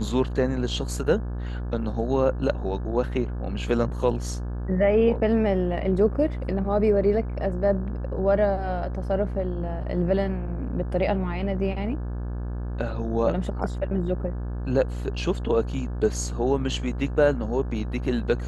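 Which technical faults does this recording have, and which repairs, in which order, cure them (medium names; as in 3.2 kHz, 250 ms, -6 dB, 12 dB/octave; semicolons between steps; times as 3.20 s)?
buzz 60 Hz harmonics 29 -30 dBFS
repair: de-hum 60 Hz, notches 29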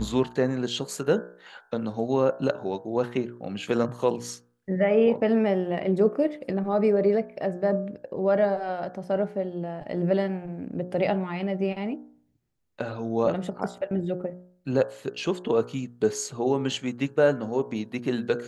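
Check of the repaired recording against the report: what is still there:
nothing left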